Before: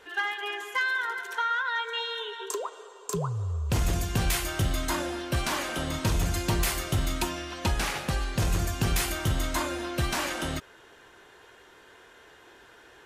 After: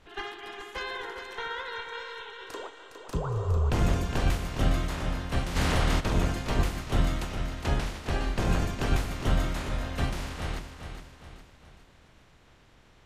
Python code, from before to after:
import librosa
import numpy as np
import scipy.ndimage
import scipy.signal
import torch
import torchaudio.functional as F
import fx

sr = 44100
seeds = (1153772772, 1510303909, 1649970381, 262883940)

y = fx.spec_clip(x, sr, under_db=22)
y = fx.riaa(y, sr, side='playback')
y = fx.hum_notches(y, sr, base_hz=50, count=7)
y = fx.echo_feedback(y, sr, ms=411, feedback_pct=47, wet_db=-8.5)
y = fx.env_flatten(y, sr, amount_pct=70, at=(5.55, 5.99), fade=0.02)
y = y * 10.0 ** (-6.0 / 20.0)